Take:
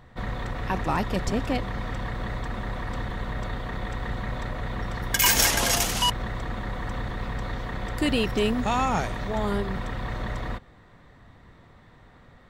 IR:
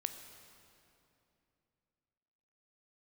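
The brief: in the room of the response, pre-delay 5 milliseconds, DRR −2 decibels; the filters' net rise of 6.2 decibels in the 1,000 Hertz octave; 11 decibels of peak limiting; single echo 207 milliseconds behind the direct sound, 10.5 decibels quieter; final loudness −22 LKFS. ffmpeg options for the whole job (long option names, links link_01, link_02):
-filter_complex "[0:a]equalizer=frequency=1000:width_type=o:gain=7.5,alimiter=limit=-17dB:level=0:latency=1,aecho=1:1:207:0.299,asplit=2[link_01][link_02];[1:a]atrim=start_sample=2205,adelay=5[link_03];[link_02][link_03]afir=irnorm=-1:irlink=0,volume=2.5dB[link_04];[link_01][link_04]amix=inputs=2:normalize=0,volume=2dB"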